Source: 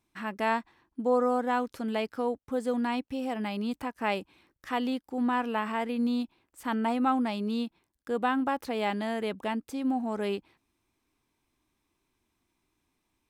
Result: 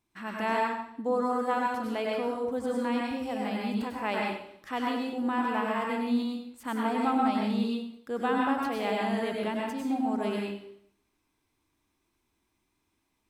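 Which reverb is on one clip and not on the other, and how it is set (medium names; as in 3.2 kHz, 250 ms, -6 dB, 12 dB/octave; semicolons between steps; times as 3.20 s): plate-style reverb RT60 0.69 s, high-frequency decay 0.9×, pre-delay 85 ms, DRR -2 dB; trim -3 dB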